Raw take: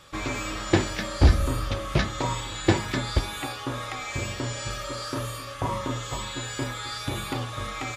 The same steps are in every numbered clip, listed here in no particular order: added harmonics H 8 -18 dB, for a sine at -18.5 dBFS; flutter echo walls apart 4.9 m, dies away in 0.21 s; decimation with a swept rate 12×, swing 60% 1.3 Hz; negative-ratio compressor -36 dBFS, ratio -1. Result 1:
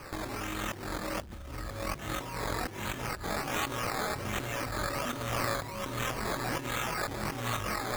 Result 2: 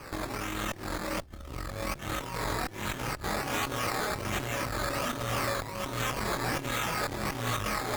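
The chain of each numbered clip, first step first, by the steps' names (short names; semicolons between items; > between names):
added harmonics > flutter echo > decimation with a swept rate > negative-ratio compressor; decimation with a swept rate > flutter echo > negative-ratio compressor > added harmonics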